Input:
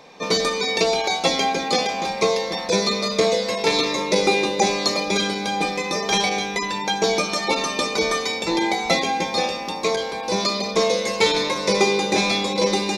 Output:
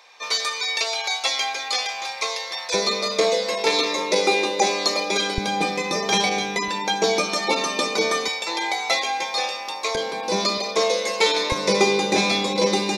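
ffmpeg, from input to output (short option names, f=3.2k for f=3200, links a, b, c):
-af "asetnsamples=n=441:p=0,asendcmd='2.74 highpass f 330;5.38 highpass f 86;6.68 highpass f 200;8.28 highpass f 720;9.95 highpass f 170;10.58 highpass f 380;11.52 highpass f 110',highpass=1.1k"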